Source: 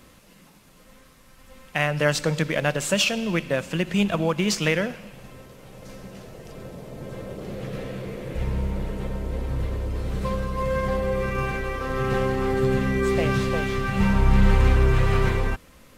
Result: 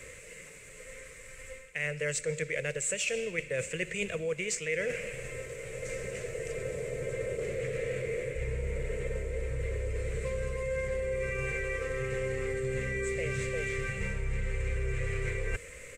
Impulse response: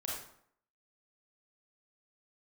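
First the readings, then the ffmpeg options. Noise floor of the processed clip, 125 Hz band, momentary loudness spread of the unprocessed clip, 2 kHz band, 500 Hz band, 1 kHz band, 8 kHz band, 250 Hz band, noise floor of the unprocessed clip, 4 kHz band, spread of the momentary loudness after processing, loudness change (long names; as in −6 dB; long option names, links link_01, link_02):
−49 dBFS, −11.5 dB, 18 LU, −6.0 dB, −6.5 dB, −19.5 dB, −2.5 dB, −17.5 dB, −53 dBFS, −13.0 dB, 9 LU, −9.5 dB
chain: -filter_complex "[0:a]acrossover=split=350|3000[link_01][link_02][link_03];[link_02]acompressor=threshold=-36dB:ratio=1.5[link_04];[link_01][link_04][link_03]amix=inputs=3:normalize=0,firequalizer=gain_entry='entry(130,0);entry(200,-12);entry(300,-10);entry(460,11);entry(790,-13);entry(2100,13);entry(3200,-3);entry(5000,-4);entry(7800,14);entry(11000,-7)':delay=0.05:min_phase=1,areverse,acompressor=threshold=-32dB:ratio=6,areverse,volume=1.5dB"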